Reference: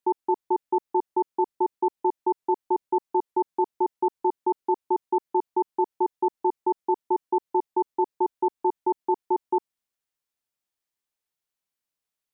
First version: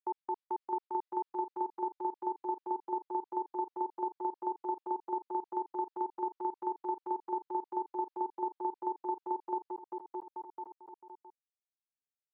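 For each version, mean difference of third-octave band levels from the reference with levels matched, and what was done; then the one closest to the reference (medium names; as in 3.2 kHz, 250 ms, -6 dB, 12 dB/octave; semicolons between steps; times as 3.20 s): 3.0 dB: gate with hold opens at -22 dBFS; high-pass 1 kHz 6 dB/octave; bouncing-ball echo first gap 620 ms, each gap 0.7×, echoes 5; resampled via 11.025 kHz; trim -6.5 dB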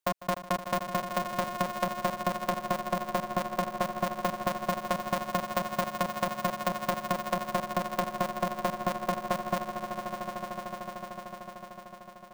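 24.0 dB: high-pass 300 Hz 12 dB/octave; compression, threshold -26 dBFS, peak gain reduction 7 dB; echo with a slow build-up 150 ms, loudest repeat 5, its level -10.5 dB; polarity switched at an audio rate 180 Hz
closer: first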